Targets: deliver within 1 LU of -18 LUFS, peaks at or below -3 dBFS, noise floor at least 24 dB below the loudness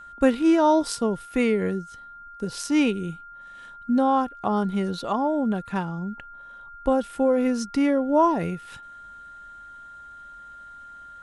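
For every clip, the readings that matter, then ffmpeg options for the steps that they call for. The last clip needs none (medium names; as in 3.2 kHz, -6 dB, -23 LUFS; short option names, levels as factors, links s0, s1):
steady tone 1.4 kHz; tone level -41 dBFS; loudness -24.0 LUFS; peak level -7.0 dBFS; loudness target -18.0 LUFS
-> -af "bandreject=f=1400:w=30"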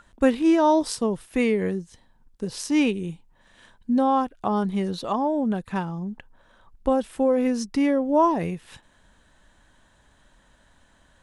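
steady tone not found; loudness -23.5 LUFS; peak level -7.0 dBFS; loudness target -18.0 LUFS
-> -af "volume=1.88,alimiter=limit=0.708:level=0:latency=1"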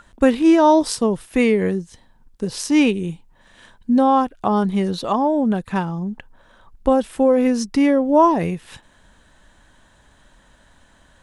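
loudness -18.5 LUFS; peak level -3.0 dBFS; noise floor -55 dBFS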